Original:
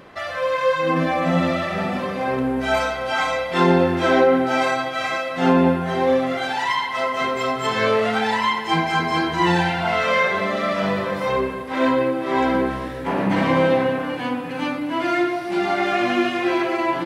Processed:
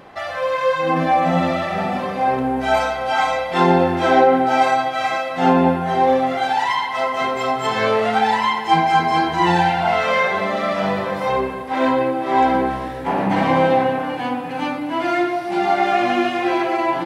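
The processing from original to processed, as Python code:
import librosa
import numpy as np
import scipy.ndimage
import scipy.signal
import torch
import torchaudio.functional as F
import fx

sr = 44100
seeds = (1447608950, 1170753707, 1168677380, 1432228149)

y = fx.peak_eq(x, sr, hz=790.0, db=9.5, octaves=0.33)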